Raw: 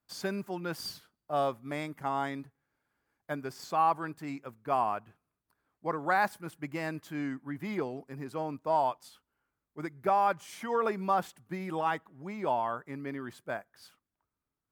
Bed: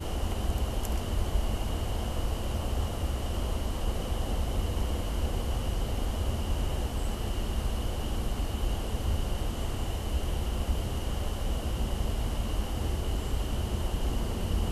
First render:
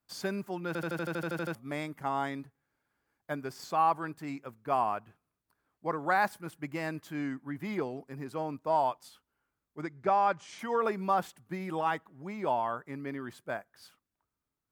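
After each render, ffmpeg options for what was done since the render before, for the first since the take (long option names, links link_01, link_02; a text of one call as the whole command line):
ffmpeg -i in.wav -filter_complex "[0:a]asettb=1/sr,asplit=3[link_01][link_02][link_03];[link_01]atrim=end=9.814[link_04];[link_02]atrim=start=9.81:end=10.59,asetpts=PTS-STARTPTS,afade=type=in:duration=0.004:curve=qsin,afade=type=out:start_time=0.776:duration=0.004:curve=qsin,lowpass=frequency=7300:width=0.5412,lowpass=frequency=7300:width=1.3066[link_05];[link_03]atrim=start=10.586[link_06];[link_04][link_05]acrossfade=duration=0.004:curve1=hsin:curve2=qsin[link_07];[link_07][link_06]acrossfade=duration=0.004:curve1=qsin:curve2=hsin,asplit=12[link_08][link_09][link_10][link_11][link_12][link_13][link_14][link_15][link_16][link_17][link_18][link_19];[link_08]atrim=end=0.752[link_20];[link_09]atrim=start=0.668:end=0.752[link_21];[link_10]atrim=start=0.668:end=0.752[link_22];[link_11]atrim=start=0.668:end=0.752[link_23];[link_12]atrim=start=0.668:end=0.752[link_24];[link_13]atrim=start=0.668:end=0.752[link_25];[link_14]atrim=start=0.668:end=0.752[link_26];[link_15]atrim=start=0.668:end=0.752[link_27];[link_16]atrim=start=0.668:end=0.752[link_28];[link_17]atrim=start=0.668:end=0.752[link_29];[link_18]atrim=start=0.668:end=0.752[link_30];[link_19]atrim=start=1.548[link_31];[link_20][link_21]acrossfade=duration=0.004:curve1=hsin:curve2=hsin[link_32];[link_32][link_22]acrossfade=duration=0.004:curve1=hsin:curve2=hsin[link_33];[link_33][link_23]acrossfade=duration=0.004:curve1=hsin:curve2=hsin[link_34];[link_34][link_24]acrossfade=duration=0.004:curve1=hsin:curve2=hsin[link_35];[link_35][link_25]acrossfade=duration=0.004:curve1=hsin:curve2=hsin[link_36];[link_36][link_26]acrossfade=duration=0.004:curve1=hsin:curve2=hsin[link_37];[link_37][link_27]acrossfade=duration=0.004:curve1=hsin:curve2=hsin[link_38];[link_38][link_28]acrossfade=duration=0.004:curve1=hsin:curve2=hsin[link_39];[link_39][link_29]acrossfade=duration=0.004:curve1=hsin:curve2=hsin[link_40];[link_40][link_30]acrossfade=duration=0.004:curve1=hsin:curve2=hsin[link_41];[link_41][link_31]acrossfade=duration=0.004:curve1=hsin:curve2=hsin" out.wav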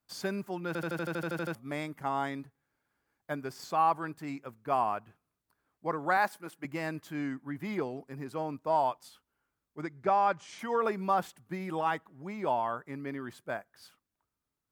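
ffmpeg -i in.wav -filter_complex "[0:a]asettb=1/sr,asplit=3[link_01][link_02][link_03];[link_01]atrim=end=6.174[link_04];[link_02]atrim=start=6.17:end=6.65,asetpts=PTS-STARTPTS,afade=type=in:duration=0.004:curve=qsin,afade=type=out:start_time=0.476:duration=0.004:curve=qsin,highpass=250[link_05];[link_03]atrim=start=6.646[link_06];[link_04][link_05]acrossfade=duration=0.004:curve1=hsin:curve2=qsin[link_07];[link_07][link_06]acrossfade=duration=0.004:curve1=qsin:curve2=hsin" out.wav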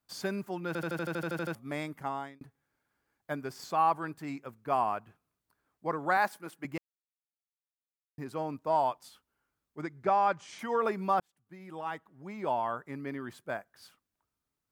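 ffmpeg -i in.wav -filter_complex "[0:a]asplit=5[link_01][link_02][link_03][link_04][link_05];[link_01]atrim=end=2.41,asetpts=PTS-STARTPTS,afade=type=out:start_time=1.98:duration=0.43[link_06];[link_02]atrim=start=2.41:end=6.78,asetpts=PTS-STARTPTS,afade=type=in:duration=0.004:curve=hsin,afade=type=out:start_time=4.366:duration=0.004:curve=hsin[link_07];[link_03]atrim=start=6.78:end=8.18,asetpts=PTS-STARTPTS,volume=0[link_08];[link_04]atrim=start=8.18:end=11.2,asetpts=PTS-STARTPTS,afade=type=in:duration=0.004:curve=hsin,afade=type=out:start_time=3.016:duration=0.004:curve=hsin[link_09];[link_05]atrim=start=11.2,asetpts=PTS-STARTPTS,afade=type=in:duration=1.5[link_10];[link_06][link_07][link_08][link_09][link_10]concat=n=5:v=0:a=1" out.wav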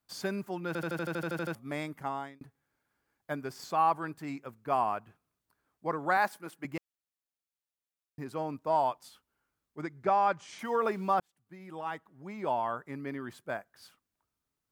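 ffmpeg -i in.wav -filter_complex "[0:a]asettb=1/sr,asplit=3[link_01][link_02][link_03];[link_01]atrim=end=10.644[link_04];[link_02]atrim=start=10.64:end=11.14,asetpts=PTS-STARTPTS,afade=type=in:duration=0.004:curve=qsin,afade=type=out:start_time=0.496:duration=0.004:curve=qsin,aeval=exprs='val(0)*gte(abs(val(0)),0.00282)':channel_layout=same[link_05];[link_03]atrim=start=11.136[link_06];[link_04][link_05]acrossfade=duration=0.004:curve1=hsin:curve2=qsin[link_07];[link_07][link_06]acrossfade=duration=0.004:curve1=qsin:curve2=hsin" out.wav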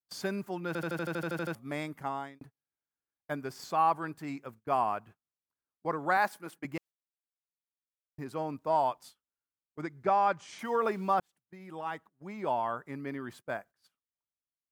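ffmpeg -i in.wav -af "agate=range=-21dB:threshold=-51dB:ratio=16:detection=peak" out.wav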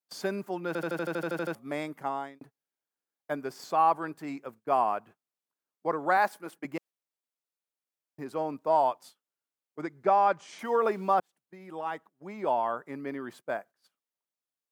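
ffmpeg -i in.wav -af "highpass=170,equalizer=frequency=540:width=0.75:gain=4.5" out.wav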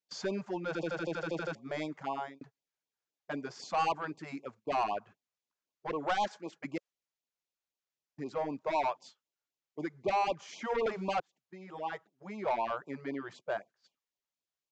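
ffmpeg -i in.wav -af "aresample=16000,asoftclip=type=tanh:threshold=-25dB,aresample=44100,afftfilt=real='re*(1-between(b*sr/1024,230*pow(1700/230,0.5+0.5*sin(2*PI*3.9*pts/sr))/1.41,230*pow(1700/230,0.5+0.5*sin(2*PI*3.9*pts/sr))*1.41))':imag='im*(1-between(b*sr/1024,230*pow(1700/230,0.5+0.5*sin(2*PI*3.9*pts/sr))/1.41,230*pow(1700/230,0.5+0.5*sin(2*PI*3.9*pts/sr))*1.41))':win_size=1024:overlap=0.75" out.wav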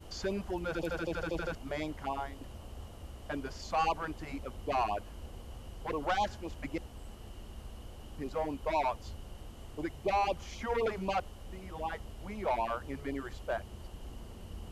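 ffmpeg -i in.wav -i bed.wav -filter_complex "[1:a]volume=-16dB[link_01];[0:a][link_01]amix=inputs=2:normalize=0" out.wav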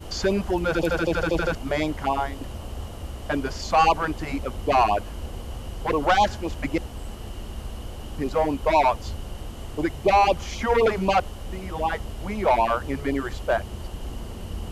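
ffmpeg -i in.wav -af "volume=12dB" out.wav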